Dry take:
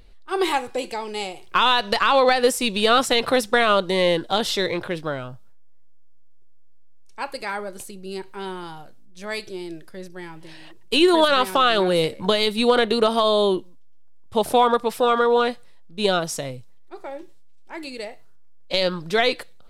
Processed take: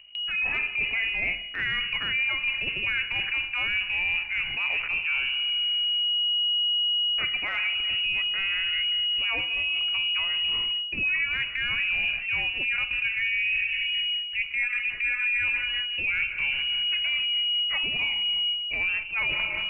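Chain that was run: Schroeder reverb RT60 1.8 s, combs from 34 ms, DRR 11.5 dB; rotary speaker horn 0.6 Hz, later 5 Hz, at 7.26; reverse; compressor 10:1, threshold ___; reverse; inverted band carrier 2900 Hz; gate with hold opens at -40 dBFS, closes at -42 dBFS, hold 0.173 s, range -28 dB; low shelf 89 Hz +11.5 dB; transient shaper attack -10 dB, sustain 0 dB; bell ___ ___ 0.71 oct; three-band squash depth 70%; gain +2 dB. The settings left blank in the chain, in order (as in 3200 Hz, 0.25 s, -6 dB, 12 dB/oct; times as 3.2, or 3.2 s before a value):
-33 dBFS, 2200 Hz, +10.5 dB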